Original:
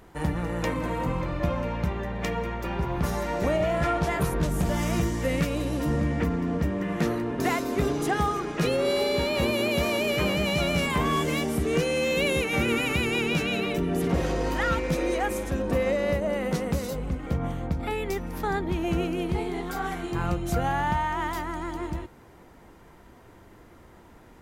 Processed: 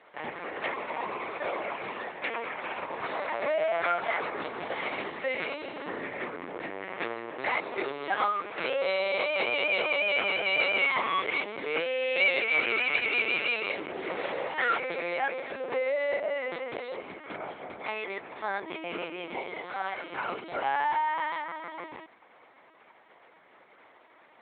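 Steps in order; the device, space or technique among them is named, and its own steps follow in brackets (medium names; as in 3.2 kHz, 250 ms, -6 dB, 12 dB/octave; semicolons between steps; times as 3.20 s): talking toy (LPC vocoder at 8 kHz pitch kept; high-pass 580 Hz 12 dB/octave; peaking EQ 2.2 kHz +7 dB 0.21 oct)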